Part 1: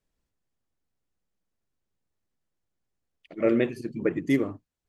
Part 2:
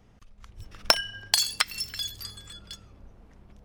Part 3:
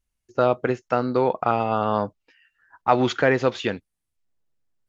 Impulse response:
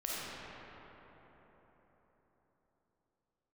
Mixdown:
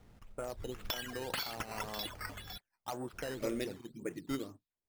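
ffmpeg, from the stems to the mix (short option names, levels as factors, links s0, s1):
-filter_complex "[0:a]lowpass=f=3800:t=q:w=5.6,volume=0.188[s0];[1:a]volume=9.44,asoftclip=hard,volume=0.106,volume=1.33,asplit=3[s1][s2][s3];[s1]atrim=end=2.58,asetpts=PTS-STARTPTS,afade=t=out:st=2.576:d=0.004:c=hsin[s4];[s2]atrim=start=2.58:end=3.13,asetpts=PTS-STARTPTS,volume=0[s5];[s3]atrim=start=3.13,asetpts=PTS-STARTPTS,afade=t=in:d=0.004:c=hsin[s6];[s4][s5][s6]concat=n=3:v=0:a=1[s7];[2:a]afwtdn=0.0398,aeval=exprs='0.708*sin(PI/2*1.58*val(0)/0.708)':c=same,volume=0.106[s8];[s7][s8]amix=inputs=2:normalize=0,flanger=delay=1.8:depth=9:regen=-79:speed=1.9:shape=triangular,acompressor=threshold=0.0141:ratio=4,volume=1[s9];[s0][s9]amix=inputs=2:normalize=0,acrusher=samples=9:mix=1:aa=0.000001:lfo=1:lforange=9:lforate=1.9"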